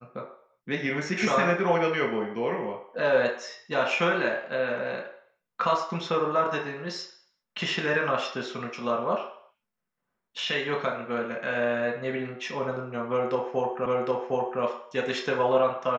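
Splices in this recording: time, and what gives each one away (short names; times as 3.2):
13.86 repeat of the last 0.76 s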